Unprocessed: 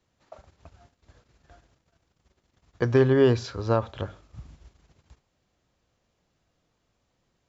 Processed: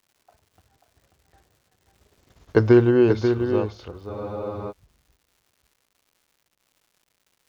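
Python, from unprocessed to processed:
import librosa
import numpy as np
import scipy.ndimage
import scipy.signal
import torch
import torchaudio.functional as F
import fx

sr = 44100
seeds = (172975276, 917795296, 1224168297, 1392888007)

y = fx.doppler_pass(x, sr, speed_mps=38, closest_m=8.2, pass_at_s=2.34)
y = fx.peak_eq(y, sr, hz=430.0, db=4.5, octaves=0.97)
y = y + 10.0 ** (-7.0 / 20.0) * np.pad(y, (int(537 * sr / 1000.0), 0))[:len(y)]
y = fx.dmg_crackle(y, sr, seeds[0], per_s=280.0, level_db=-59.0)
y = fx.spec_freeze(y, sr, seeds[1], at_s=4.12, hold_s=0.59)
y = y * librosa.db_to_amplitude(8.5)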